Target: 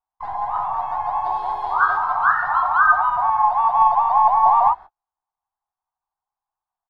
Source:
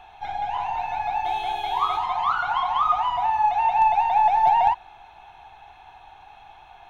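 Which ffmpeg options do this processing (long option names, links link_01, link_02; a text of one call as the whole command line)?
ffmpeg -i in.wav -filter_complex "[0:a]highshelf=frequency=1700:width_type=q:width=3:gain=-10.5,agate=range=-45dB:threshold=-32dB:ratio=16:detection=peak,asplit=3[link_01][link_02][link_03];[link_02]asetrate=37084,aresample=44100,atempo=1.18921,volume=-17dB[link_04];[link_03]asetrate=55563,aresample=44100,atempo=0.793701,volume=-3dB[link_05];[link_01][link_04][link_05]amix=inputs=3:normalize=0,volume=-2dB" out.wav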